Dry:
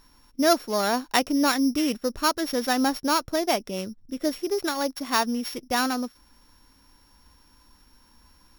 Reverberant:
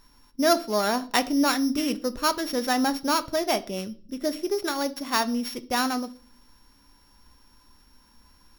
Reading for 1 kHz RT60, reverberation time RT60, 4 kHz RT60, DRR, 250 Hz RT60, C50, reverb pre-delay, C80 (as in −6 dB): 0.35 s, 0.40 s, 0.40 s, 10.5 dB, 0.80 s, 19.0 dB, 5 ms, 24.5 dB